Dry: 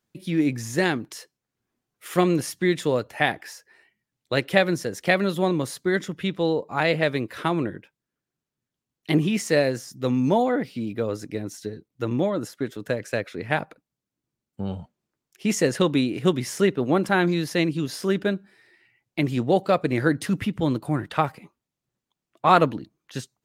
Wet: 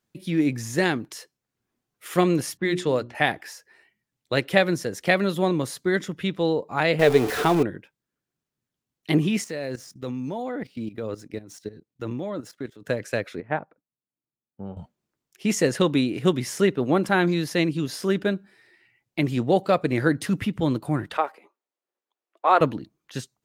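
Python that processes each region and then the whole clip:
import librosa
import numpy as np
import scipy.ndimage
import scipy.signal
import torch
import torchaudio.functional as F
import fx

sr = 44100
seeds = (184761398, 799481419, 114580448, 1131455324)

y = fx.chain(x, sr, fx.env_lowpass(base_hz=1200.0, full_db=-17.5),
    fx.hum_notches(base_hz=60, count=6), at=(2.57, 3.15))
y = fx.chain(y, sr, fx.zero_step(step_db=-26.0),
    fx.small_body(hz=(440.0, 730.0), ring_ms=90, db=15), at=(6.99, 7.63))
y = fx.chain(y, sr, fx.median_filter(points=3),
    fx.highpass(hz=54.0, slope=12),
    fx.level_steps(step_db=15), at=(9.44, 12.87))
y = fx.chain(y, sr, fx.lowpass(hz=1400.0, slope=12),
    fx.low_shelf(hz=110.0, db=-8.5),
    fx.upward_expand(threshold_db=-42.0, expansion=1.5), at=(13.4, 14.77))
y = fx.chain(y, sr, fx.highpass(hz=380.0, slope=24),
    fx.high_shelf(hz=2700.0, db=-11.0), at=(21.17, 22.61))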